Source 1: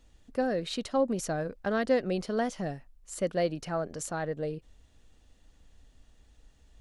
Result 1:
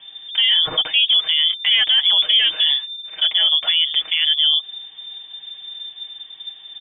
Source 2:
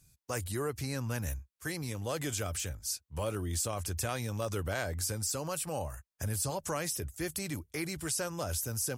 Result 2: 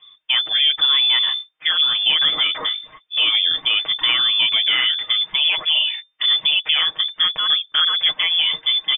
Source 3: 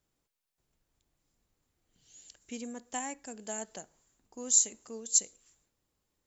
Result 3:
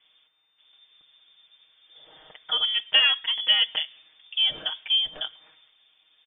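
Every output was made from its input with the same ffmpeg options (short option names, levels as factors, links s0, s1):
-af "aemphasis=mode=reproduction:type=50kf,aecho=1:1:6.4:0.71,lowpass=f=3100:t=q:w=0.5098,lowpass=f=3100:t=q:w=0.6013,lowpass=f=3100:t=q:w=0.9,lowpass=f=3100:t=q:w=2.563,afreqshift=-3600,alimiter=level_in=17.8:limit=0.891:release=50:level=0:latency=1,volume=0.447"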